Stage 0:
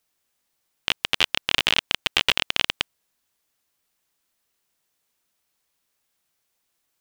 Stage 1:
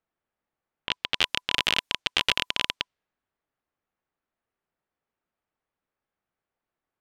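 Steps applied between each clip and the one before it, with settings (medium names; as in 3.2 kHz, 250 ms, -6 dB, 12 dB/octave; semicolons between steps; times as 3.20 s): band-stop 1 kHz, Q 25; level-controlled noise filter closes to 1.5 kHz, open at -21.5 dBFS; trim -3 dB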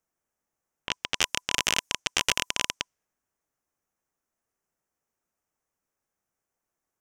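resonant high shelf 5 kHz +6.5 dB, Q 3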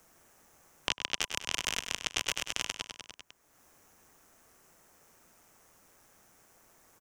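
AM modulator 170 Hz, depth 25%; feedback delay 99 ms, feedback 50%, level -10 dB; three bands compressed up and down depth 100%; trim -5.5 dB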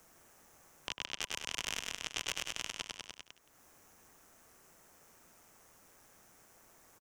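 peak limiter -19.5 dBFS, peak gain reduction 10.5 dB; delay 171 ms -17.5 dB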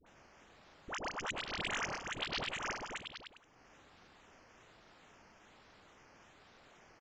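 decimation with a swept rate 9×, swing 60% 1.2 Hz; phase dispersion highs, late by 67 ms, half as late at 860 Hz; resampled via 16 kHz; trim +1 dB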